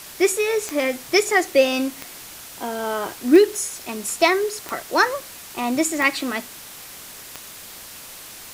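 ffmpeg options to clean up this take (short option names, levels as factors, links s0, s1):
-af "adeclick=t=4,afwtdn=0.013"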